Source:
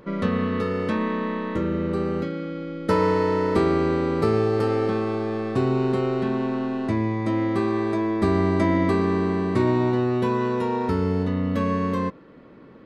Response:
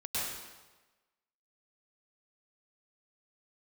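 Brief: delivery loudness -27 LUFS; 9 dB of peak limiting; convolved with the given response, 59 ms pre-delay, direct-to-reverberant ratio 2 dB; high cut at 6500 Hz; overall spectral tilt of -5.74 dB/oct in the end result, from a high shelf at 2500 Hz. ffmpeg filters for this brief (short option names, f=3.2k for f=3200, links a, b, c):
-filter_complex "[0:a]lowpass=6.5k,highshelf=f=2.5k:g=-3,alimiter=limit=-18dB:level=0:latency=1,asplit=2[a][b];[1:a]atrim=start_sample=2205,adelay=59[c];[b][c]afir=irnorm=-1:irlink=0,volume=-7.5dB[d];[a][d]amix=inputs=2:normalize=0,volume=-3dB"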